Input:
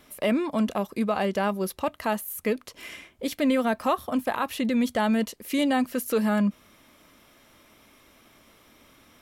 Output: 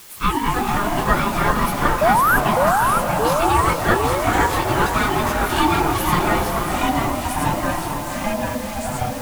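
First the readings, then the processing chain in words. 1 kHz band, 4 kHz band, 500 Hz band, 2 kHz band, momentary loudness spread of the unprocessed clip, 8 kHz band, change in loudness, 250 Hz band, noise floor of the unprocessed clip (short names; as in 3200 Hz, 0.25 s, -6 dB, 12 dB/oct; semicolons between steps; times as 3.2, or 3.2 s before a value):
+14.0 dB, +9.5 dB, +6.5 dB, +13.0 dB, 6 LU, +12.5 dB, +7.5 dB, +2.0 dB, -58 dBFS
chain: phase scrambler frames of 50 ms; HPF 280 Hz 24 dB/oct; in parallel at -6.5 dB: requantised 6-bit, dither triangular; on the sum: ring modulator 610 Hz; crossover distortion -50.5 dBFS; painted sound rise, 2.01–2.37, 580–1700 Hz -21 dBFS; echoes that change speed 0.172 s, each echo -3 st, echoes 3; on a send: diffused feedback echo 0.466 s, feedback 45%, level -6 dB; on the sum: gain +5.5 dB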